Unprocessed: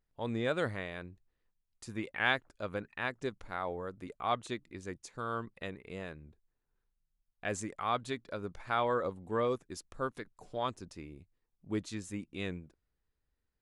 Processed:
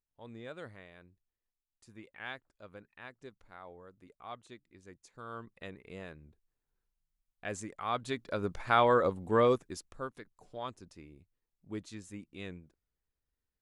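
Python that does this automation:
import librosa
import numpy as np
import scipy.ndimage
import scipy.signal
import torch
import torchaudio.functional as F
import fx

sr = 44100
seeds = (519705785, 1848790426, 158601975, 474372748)

y = fx.gain(x, sr, db=fx.line((4.7, -13.0), (5.79, -3.0), (7.8, -3.0), (8.42, 6.0), (9.51, 6.0), (10.11, -5.5)))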